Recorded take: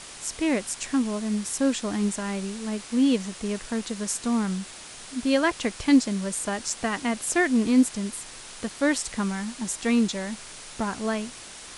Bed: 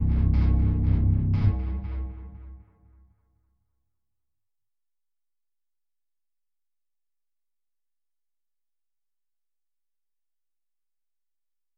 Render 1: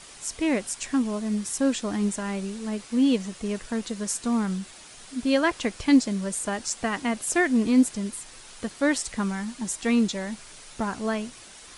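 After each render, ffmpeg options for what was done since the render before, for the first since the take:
ffmpeg -i in.wav -af "afftdn=noise_reduction=6:noise_floor=-43" out.wav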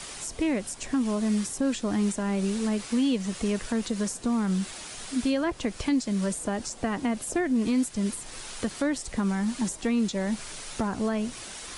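ffmpeg -i in.wav -filter_complex "[0:a]acrossover=split=170|820[link_01][link_02][link_03];[link_01]acompressor=threshold=-40dB:ratio=4[link_04];[link_02]acompressor=threshold=-33dB:ratio=4[link_05];[link_03]acompressor=threshold=-43dB:ratio=4[link_06];[link_04][link_05][link_06]amix=inputs=3:normalize=0,asplit=2[link_07][link_08];[link_08]alimiter=level_in=2.5dB:limit=-24dB:level=0:latency=1,volume=-2.5dB,volume=2dB[link_09];[link_07][link_09]amix=inputs=2:normalize=0" out.wav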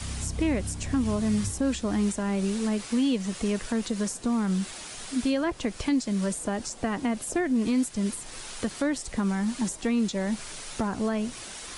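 ffmpeg -i in.wav -i bed.wav -filter_complex "[1:a]volume=-12.5dB[link_01];[0:a][link_01]amix=inputs=2:normalize=0" out.wav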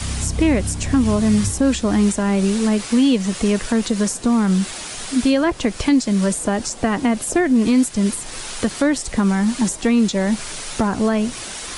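ffmpeg -i in.wav -af "volume=9.5dB" out.wav

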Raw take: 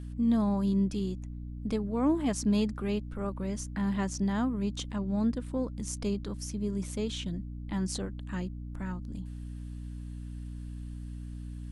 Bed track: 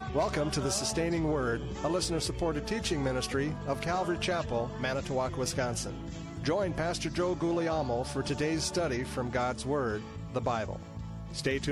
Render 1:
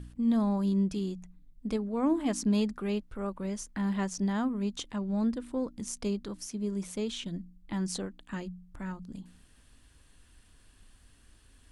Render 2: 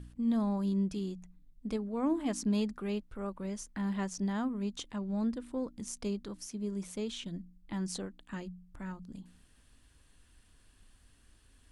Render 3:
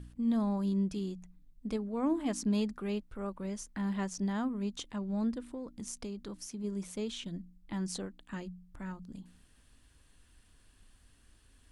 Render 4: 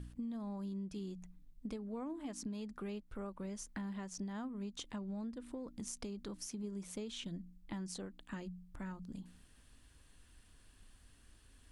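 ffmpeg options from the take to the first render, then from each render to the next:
ffmpeg -i in.wav -af "bandreject=frequency=60:width_type=h:width=4,bandreject=frequency=120:width_type=h:width=4,bandreject=frequency=180:width_type=h:width=4,bandreject=frequency=240:width_type=h:width=4,bandreject=frequency=300:width_type=h:width=4" out.wav
ffmpeg -i in.wav -af "volume=-3.5dB" out.wav
ffmpeg -i in.wav -filter_complex "[0:a]asplit=3[link_01][link_02][link_03];[link_01]afade=type=out:start_time=5.52:duration=0.02[link_04];[link_02]acompressor=threshold=-36dB:ratio=6:attack=3.2:release=140:knee=1:detection=peak,afade=type=in:start_time=5.52:duration=0.02,afade=type=out:start_time=6.63:duration=0.02[link_05];[link_03]afade=type=in:start_time=6.63:duration=0.02[link_06];[link_04][link_05][link_06]amix=inputs=3:normalize=0" out.wav
ffmpeg -i in.wav -af "alimiter=level_in=2.5dB:limit=-24dB:level=0:latency=1:release=272,volume=-2.5dB,acompressor=threshold=-40dB:ratio=6" out.wav

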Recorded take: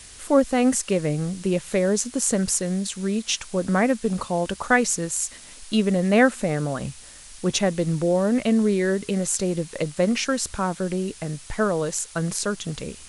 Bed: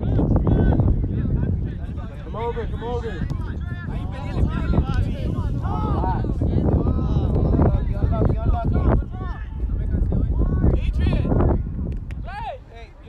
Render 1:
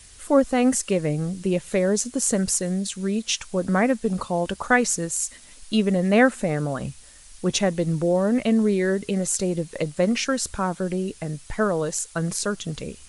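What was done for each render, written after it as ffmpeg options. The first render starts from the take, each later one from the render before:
ffmpeg -i in.wav -af "afftdn=noise_reduction=6:noise_floor=-44" out.wav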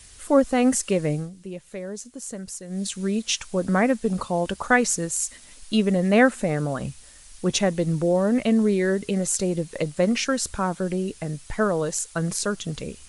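ffmpeg -i in.wav -filter_complex "[0:a]asplit=3[link_01][link_02][link_03];[link_01]atrim=end=1.3,asetpts=PTS-STARTPTS,afade=type=out:start_time=1.14:duration=0.16:silence=0.237137[link_04];[link_02]atrim=start=1.3:end=2.68,asetpts=PTS-STARTPTS,volume=-12.5dB[link_05];[link_03]atrim=start=2.68,asetpts=PTS-STARTPTS,afade=type=in:duration=0.16:silence=0.237137[link_06];[link_04][link_05][link_06]concat=n=3:v=0:a=1" out.wav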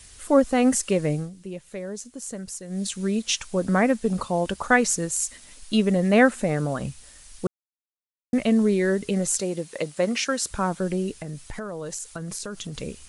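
ffmpeg -i in.wav -filter_complex "[0:a]asettb=1/sr,asplit=3[link_01][link_02][link_03];[link_01]atrim=end=9.384[link_04];[link_02]atrim=start=9.38:end=10.51,asetpts=PTS-STARTPTS,afade=type=in:duration=0.004:curve=qsin,afade=type=out:start_time=1.126:duration=0.004:curve=qsin,highpass=frequency=320:poles=1[link_05];[link_03]atrim=start=10.506[link_06];[link_04][link_05]acrossfade=duration=0.004:curve1=hsin:curve2=qsin[link_07];[link_07][link_06]acrossfade=duration=0.004:curve1=qsin:curve2=hsin,asettb=1/sr,asplit=3[link_08][link_09][link_10];[link_08]atrim=end=11.204[link_11];[link_09]atrim=start=11.2:end=12.78,asetpts=PTS-STARTPTS,afade=type=in:duration=0.004:curve=qsin,afade=type=out:start_time=1.576:duration=0.004:curve=qsin,acompressor=threshold=-29dB:ratio=10:attack=3.2:release=140:knee=1:detection=peak[link_12];[link_10]atrim=start=12.776[link_13];[link_11][link_12]acrossfade=duration=0.004:curve1=hsin:curve2=qsin[link_14];[link_14][link_13]acrossfade=duration=0.004:curve1=qsin:curve2=hsin,asplit=3[link_15][link_16][link_17];[link_15]atrim=end=7.47,asetpts=PTS-STARTPTS,afade=type=out:start_time=7.466:duration=0.004:curve=hsin[link_18];[link_16]atrim=start=7.47:end=8.33,asetpts=PTS-STARTPTS,volume=0[link_19];[link_17]atrim=start=8.33,asetpts=PTS-STARTPTS,afade=type=in:duration=0.004:curve=hsin[link_20];[link_18][link_19][link_20]concat=n=3:v=0:a=1" out.wav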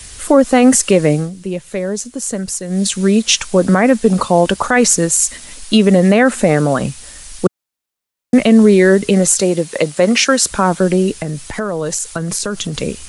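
ffmpeg -i in.wav -filter_complex "[0:a]acrossover=split=150[link_01][link_02];[link_01]acompressor=threshold=-43dB:ratio=6[link_03];[link_03][link_02]amix=inputs=2:normalize=0,alimiter=level_in=13.5dB:limit=-1dB:release=50:level=0:latency=1" out.wav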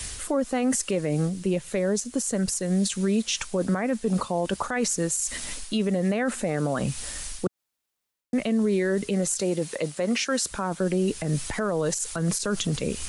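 ffmpeg -i in.wav -af "areverse,acompressor=threshold=-18dB:ratio=6,areverse,alimiter=limit=-16.5dB:level=0:latency=1:release=140" out.wav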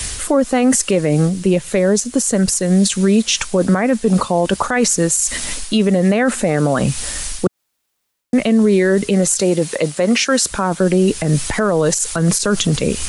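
ffmpeg -i in.wav -af "volume=10.5dB" out.wav

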